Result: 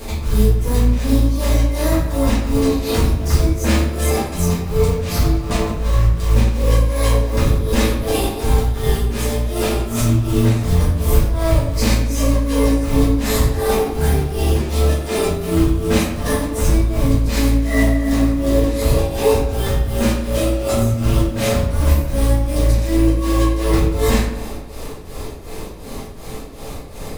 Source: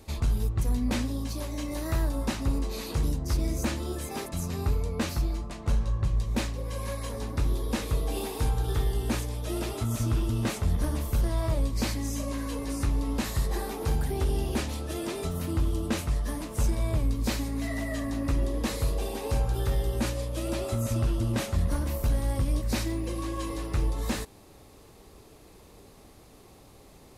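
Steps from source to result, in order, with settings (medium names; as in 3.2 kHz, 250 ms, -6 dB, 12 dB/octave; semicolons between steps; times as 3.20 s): hum notches 50/100/150/200/250 Hz; in parallel at +1.5 dB: compression, threshold -37 dBFS, peak gain reduction 13.5 dB; on the sum: peak limiter -24 dBFS, peak gain reduction 9.5 dB; tremolo 2.7 Hz, depth 88%; short-mantissa float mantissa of 2-bit; filtered feedback delay 90 ms, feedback 71%, low-pass 4.5 kHz, level -14 dB; simulated room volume 75 m³, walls mixed, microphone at 1.7 m; trim +8.5 dB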